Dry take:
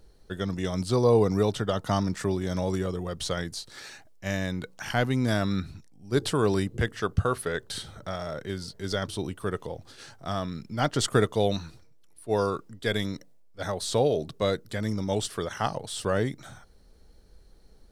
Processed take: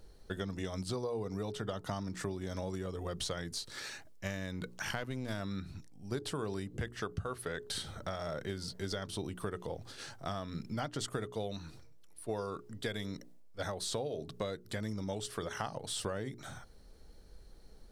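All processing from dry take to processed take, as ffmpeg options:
-filter_complex "[0:a]asettb=1/sr,asplit=3[a][b][c];[a]atrim=end=3.484[d];[b]atrim=start=3.48:end=5.4,asetpts=PTS-STARTPTS,afade=t=in:d=0.004:c=qsin,afade=t=out:st=1.916:d=0.004:c=qsin,equalizer=f=750:t=o:w=0.24:g=-5.5,aeval=exprs='clip(val(0),-1,0.0316)':c=same[e];[c]atrim=start=5.396[f];[d][e]acrossfade=d=0.004:c1=hsin:c2=qsin[g];[g][f]acrossfade=d=0.004:c1=qsin:c2=hsin,bandreject=f=60:t=h:w=6,bandreject=f=120:t=h:w=6,bandreject=f=180:t=h:w=6,bandreject=f=240:t=h:w=6,bandreject=f=300:t=h:w=6,bandreject=f=360:t=h:w=6,bandreject=f=420:t=h:w=6,acompressor=threshold=-34dB:ratio=10"

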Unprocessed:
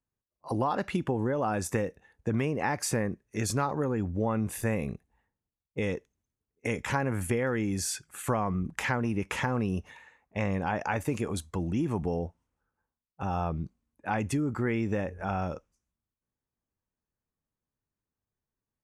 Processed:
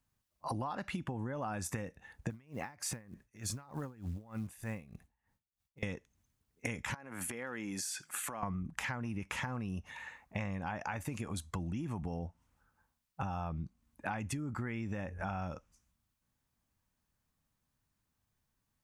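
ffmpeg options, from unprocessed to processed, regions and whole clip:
-filter_complex "[0:a]asettb=1/sr,asplit=3[a][b][c];[a]atrim=end=2.304[d];[b]atrim=start=2.3:end=5.83,asetpts=PTS-STARTPTS,afade=t=in:d=0.004:c=qsin,afade=t=out:st=3.526:d=0.004:c=qsin,acompressor=threshold=-34dB:ratio=5:attack=3.2:release=140:knee=1:detection=peak,acrusher=bits=8:mode=log:mix=0:aa=0.000001,aeval=exprs='val(0)*pow(10,-25*(0.5-0.5*cos(2*PI*3.3*n/s))/20)':c=same[e];[c]atrim=start=5.826[f];[d][e]acrossfade=d=0.004:c1=hsin:c2=qsin[g];[g][f]acrossfade=d=0.004:c1=qsin:c2=hsin,asettb=1/sr,asplit=3[h][i][j];[h]atrim=end=6.944[k];[i]atrim=start=6.94:end=8.43,asetpts=PTS-STARTPTS,afade=t=in:d=0.004:c=qsin,afade=t=out:st=1.486:d=0.004:c=qsin,highpass=270,acompressor=threshold=-39dB:ratio=12:attack=3.2:release=140:knee=1:detection=peak[l];[j]atrim=start=8.426[m];[k][l]acrossfade=d=0.004:c1=hsin:c2=qsin[n];[n][m]acrossfade=d=0.004:c1=qsin:c2=hsin,equalizer=f=420:t=o:w=0.9:g=-9,acompressor=threshold=-45dB:ratio=8,volume=9dB"

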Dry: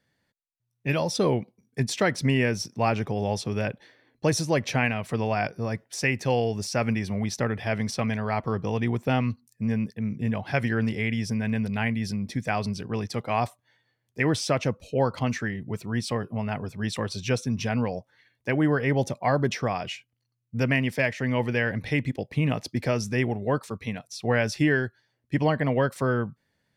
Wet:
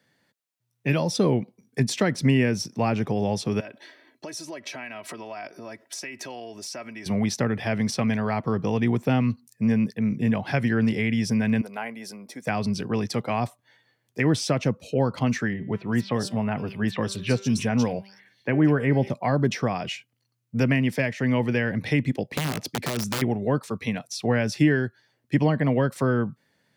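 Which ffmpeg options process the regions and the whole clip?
-filter_complex "[0:a]asettb=1/sr,asplit=3[a][b][c];[a]atrim=end=3.604[d];[b]atrim=start=3.6:end=7.06,asetpts=PTS-STARTPTS,afade=t=in:d=0.004:c=qsin,afade=t=out:st=3.456:d=0.004:c=qsin,aecho=1:1:3.1:0.58,atrim=end_sample=152586,acompressor=threshold=-38dB:ratio=8:attack=3.2:release=140:knee=1:detection=peak,highpass=f=330:p=1[e];[c]atrim=start=7.056[f];[d][e]acrossfade=d=0.004:c1=hsin:c2=qsin[g];[g][f]acrossfade=d=0.004:c1=qsin:c2=hsin,asettb=1/sr,asplit=3[h][i][j];[h]atrim=end=11.614[k];[i]atrim=start=11.61:end=12.47,asetpts=PTS-STARTPTS,afade=t=in:d=0.004:c=qsin,afade=t=out:st=0.856:d=0.004:c=qsin,highpass=570,equalizer=f=3.3k:w=0.59:g=-12.5,bandreject=f=1.8k:w=11[l];[j]atrim=start=12.466[m];[k][l]acrossfade=d=0.004:c1=hsin:c2=qsin[n];[n][m]acrossfade=d=0.004:c1=qsin:c2=hsin,asettb=1/sr,asplit=3[o][p][q];[o]atrim=end=15.534[r];[p]atrim=start=15.53:end=19.1,asetpts=PTS-STARTPTS,afade=t=in:d=0.004:c=qsin,afade=t=out:st=3.566:d=0.004:c=qsin,bandreject=f=195.6:t=h:w=4,bandreject=f=391.2:t=h:w=4,bandreject=f=586.8:t=h:w=4,bandreject=f=782.4:t=h:w=4,bandreject=f=978:t=h:w=4,bandreject=f=1.1736k:t=h:w=4,bandreject=f=1.3692k:t=h:w=4,bandreject=f=1.5648k:t=h:w=4,bandreject=f=1.7604k:t=h:w=4,bandreject=f=1.956k:t=h:w=4,bandreject=f=2.1516k:t=h:w=4,bandreject=f=2.3472k:t=h:w=4,bandreject=f=2.5428k:t=h:w=4,bandreject=f=2.7384k:t=h:w=4,bandreject=f=2.934k:t=h:w=4,bandreject=f=3.1296k:t=h:w=4,bandreject=f=3.3252k:t=h:w=4,bandreject=f=3.5208k:t=h:w=4,bandreject=f=3.7164k:t=h:w=4,acrossover=split=3400[s][t];[t]adelay=190[u];[s][u]amix=inputs=2:normalize=0,atrim=end_sample=157437[v];[q]atrim=start=19.096[w];[r][v]acrossfade=d=0.004:c1=hsin:c2=qsin[x];[x][w]acrossfade=d=0.004:c1=qsin:c2=hsin,asettb=1/sr,asplit=3[y][z][aa];[y]atrim=end=22.294[ab];[z]atrim=start=22.29:end=23.22,asetpts=PTS-STARTPTS,afade=t=in:d=0.004:c=qsin,afade=t=out:st=0.926:d=0.004:c=qsin,acompressor=threshold=-24dB:ratio=16:attack=3.2:release=140:knee=1:detection=peak,aeval=exprs='(mod(14.1*val(0)+1,2)-1)/14.1':c=same[ac];[aa]atrim=start=23.216[ad];[ab][ac]acrossfade=d=0.004:c1=hsin:c2=qsin[ae];[ae][ad]acrossfade=d=0.004:c1=qsin:c2=hsin,highpass=140,acrossover=split=300[af][ag];[ag]acompressor=threshold=-37dB:ratio=2[ah];[af][ah]amix=inputs=2:normalize=0,volume=6.5dB"

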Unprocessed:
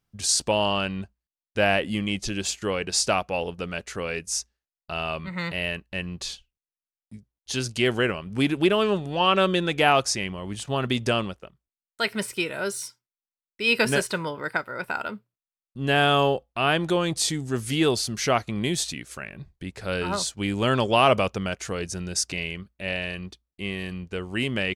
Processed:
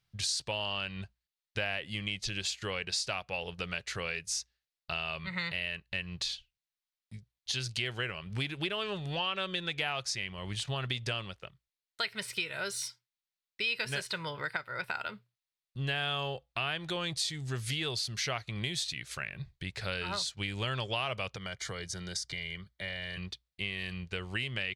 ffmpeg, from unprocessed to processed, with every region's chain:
-filter_complex "[0:a]asettb=1/sr,asplit=3[a][b][c];[a]atrim=end=21.364[d];[b]atrim=start=21.36:end=23.17,asetpts=PTS-STARTPTS,afade=t=in:d=0.004:c=qsin,afade=t=out:st=1.806:d=0.004:c=qsin,acrossover=split=81|180[e][f][g];[e]acompressor=threshold=-53dB:ratio=4[h];[f]acompressor=threshold=-46dB:ratio=4[i];[g]acompressor=threshold=-34dB:ratio=4[j];[h][i][j]amix=inputs=3:normalize=0,asuperstop=centerf=2600:order=8:qfactor=6.2[k];[c]atrim=start=23.166[l];[d][k]acrossfade=d=0.004:c1=hsin:c2=qsin[m];[m][l]acrossfade=d=0.004:c1=qsin:c2=hsin,equalizer=f=125:t=o:w=1:g=8,equalizer=f=250:t=o:w=1:g=-9,equalizer=f=2k:t=o:w=1:g=6,equalizer=f=4k:t=o:w=1:g=10,acompressor=threshold=-28dB:ratio=4,volume=-4.5dB"

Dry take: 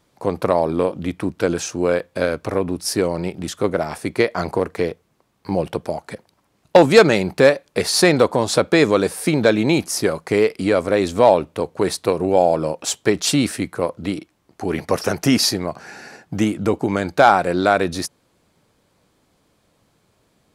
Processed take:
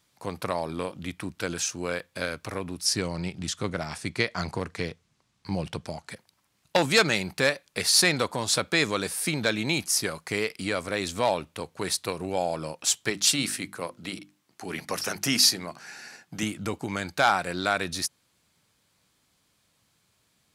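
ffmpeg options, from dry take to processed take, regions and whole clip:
-filter_complex "[0:a]asettb=1/sr,asplit=3[a][b][c];[a]atrim=end=2.854[d];[b]atrim=start=2.85:end=6.09,asetpts=PTS-STARTPTS,afade=t=in:d=0.004:c=qsin,afade=t=out:st=3.236:d=0.004:c=qsin,lowpass=7.3k,bass=f=250:g=6,treble=f=4k:g=3[e];[c]atrim=start=6.086[f];[d][e]acrossfade=d=0.004:c1=hsin:c2=qsin[g];[g][f]acrossfade=d=0.004:c1=qsin:c2=hsin,asettb=1/sr,asplit=3[h][i][j];[h]atrim=end=13.104[k];[i]atrim=start=13.1:end=16.43,asetpts=PTS-STARTPTS,afade=t=in:d=0.004:c=qsin,afade=t=out:st=3.326:d=0.004:c=qsin,highpass=130,bandreject=f=50:t=h:w=6,bandreject=f=100:t=h:w=6,bandreject=f=150:t=h:w=6,bandreject=f=200:t=h:w=6,bandreject=f=250:t=h:w=6,bandreject=f=300:t=h:w=6,bandreject=f=350:t=h:w=6[l];[j]atrim=start=16.426[m];[k][l]acrossfade=d=0.004:c1=hsin:c2=qsin[n];[n][m]acrossfade=d=0.004:c1=qsin:c2=hsin,highpass=f=150:p=1,equalizer=f=450:t=o:w=2.9:g=-14"

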